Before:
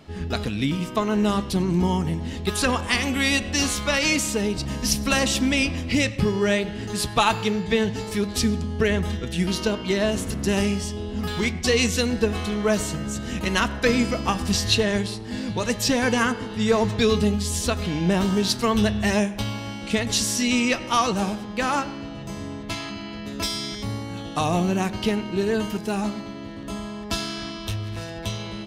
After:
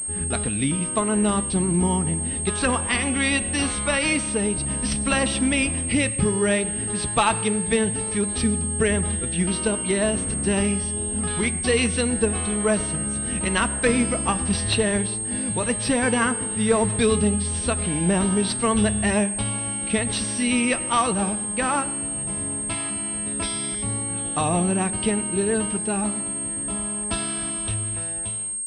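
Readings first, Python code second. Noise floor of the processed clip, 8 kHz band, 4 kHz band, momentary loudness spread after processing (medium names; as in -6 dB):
-29 dBFS, +8.5 dB, -4.0 dB, 5 LU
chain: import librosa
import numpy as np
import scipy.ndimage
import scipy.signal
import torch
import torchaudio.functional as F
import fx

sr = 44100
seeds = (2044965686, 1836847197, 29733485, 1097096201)

y = fx.fade_out_tail(x, sr, length_s=0.91)
y = fx.pwm(y, sr, carrier_hz=8500.0)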